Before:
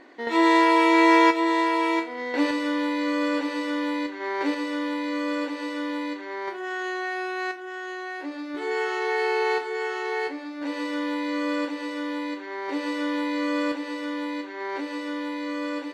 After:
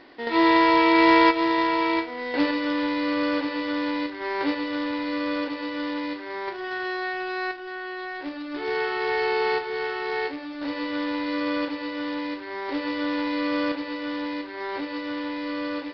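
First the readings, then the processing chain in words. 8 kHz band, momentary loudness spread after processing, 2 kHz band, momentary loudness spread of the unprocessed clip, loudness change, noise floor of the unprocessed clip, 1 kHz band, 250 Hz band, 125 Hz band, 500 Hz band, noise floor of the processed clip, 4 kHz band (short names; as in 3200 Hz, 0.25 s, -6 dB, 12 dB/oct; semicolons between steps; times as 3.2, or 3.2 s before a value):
under -10 dB, 14 LU, +0.5 dB, 14 LU, +0.5 dB, -37 dBFS, 0.0 dB, 0.0 dB, n/a, 0.0 dB, -36 dBFS, +2.0 dB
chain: companded quantiser 4-bit; downsampling 11025 Hz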